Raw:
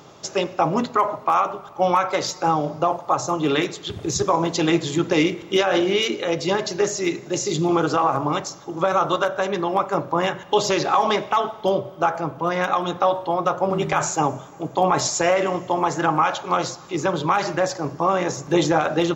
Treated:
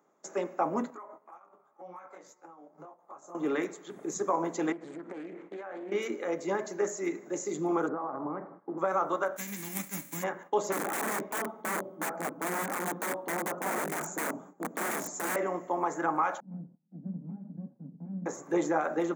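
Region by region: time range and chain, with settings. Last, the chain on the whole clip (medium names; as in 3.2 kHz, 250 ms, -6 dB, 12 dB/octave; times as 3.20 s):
0.90–3.35 s: compression 12:1, threshold -30 dBFS + detune thickener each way 30 cents
4.72–5.92 s: low-pass 3.1 kHz + compression 8:1, threshold -28 dBFS + loudspeaker Doppler distortion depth 0.37 ms
7.88–8.78 s: compression 4:1, threshold -24 dBFS + inverse Chebyshev low-pass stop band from 6.4 kHz, stop band 60 dB + tilt EQ -2.5 dB/octave
9.36–10.22 s: formants flattened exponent 0.3 + high-order bell 770 Hz -15.5 dB 2.4 oct
10.72–15.36 s: peaking EQ 220 Hz +13 dB 1.8 oct + flange 1 Hz, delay 4 ms, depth 3.4 ms, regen -66% + integer overflow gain 16.5 dB
16.40–18.26 s: comb filter that takes the minimum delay 1.3 ms + Butterworth band-pass 180 Hz, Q 1.5 + peaking EQ 180 Hz +5.5 dB 1.4 oct
whole clip: gate -38 dBFS, range -14 dB; steep high-pass 190 Hz 36 dB/octave; high-order bell 3.8 kHz -15 dB 1.3 oct; trim -9 dB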